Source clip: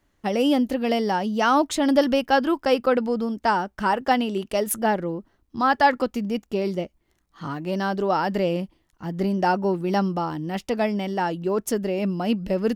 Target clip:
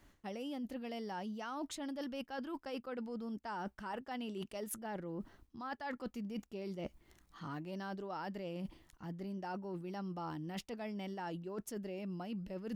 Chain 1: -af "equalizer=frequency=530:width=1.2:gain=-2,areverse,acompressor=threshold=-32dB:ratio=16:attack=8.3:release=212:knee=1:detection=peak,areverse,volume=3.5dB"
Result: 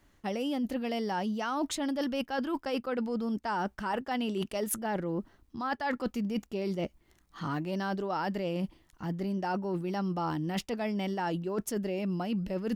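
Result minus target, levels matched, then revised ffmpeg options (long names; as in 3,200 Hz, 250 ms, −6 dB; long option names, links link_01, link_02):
downward compressor: peak gain reduction −10.5 dB
-af "equalizer=frequency=530:width=1.2:gain=-2,areverse,acompressor=threshold=-43dB:ratio=16:attack=8.3:release=212:knee=1:detection=peak,areverse,volume=3.5dB"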